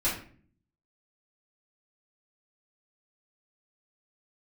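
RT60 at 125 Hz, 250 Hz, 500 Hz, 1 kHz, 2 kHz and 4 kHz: 0.85, 0.80, 0.55, 0.40, 0.45, 0.35 s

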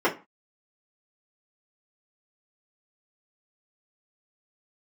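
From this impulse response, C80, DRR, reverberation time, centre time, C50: 21.0 dB, -7.0 dB, 0.30 s, 16 ms, 14.0 dB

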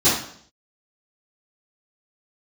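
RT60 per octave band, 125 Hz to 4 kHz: 0.65, 0.65, 0.60, 0.55, 0.55, 0.60 s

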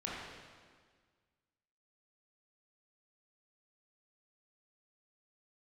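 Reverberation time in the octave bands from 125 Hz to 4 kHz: 1.9, 1.8, 1.7, 1.6, 1.6, 1.5 s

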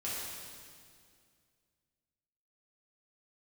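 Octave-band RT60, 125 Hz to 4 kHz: 2.6, 2.6, 2.3, 2.0, 2.0, 2.0 s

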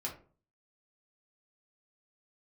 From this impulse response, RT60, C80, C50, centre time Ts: 0.40 s, 15.0 dB, 9.5 dB, 19 ms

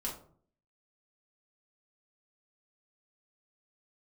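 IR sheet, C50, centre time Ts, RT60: 7.5 dB, 27 ms, 0.55 s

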